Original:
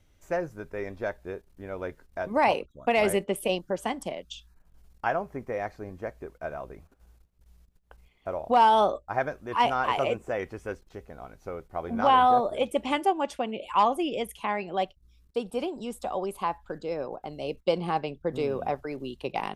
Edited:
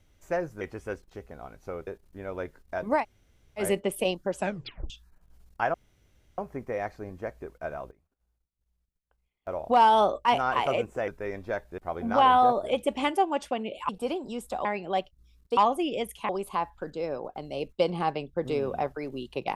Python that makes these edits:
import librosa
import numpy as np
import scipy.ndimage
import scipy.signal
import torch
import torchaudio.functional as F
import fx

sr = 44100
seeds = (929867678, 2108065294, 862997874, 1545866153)

y = fx.edit(x, sr, fx.swap(start_s=0.61, length_s=0.7, other_s=10.4, other_length_s=1.26),
    fx.room_tone_fill(start_s=2.44, length_s=0.61, crossfade_s=0.1),
    fx.tape_stop(start_s=3.8, length_s=0.54),
    fx.insert_room_tone(at_s=5.18, length_s=0.64),
    fx.fade_down_up(start_s=6.54, length_s=1.9, db=-19.5, fade_s=0.17, curve='log'),
    fx.cut(start_s=9.05, length_s=0.52),
    fx.swap(start_s=13.77, length_s=0.72, other_s=15.41, other_length_s=0.76), tone=tone)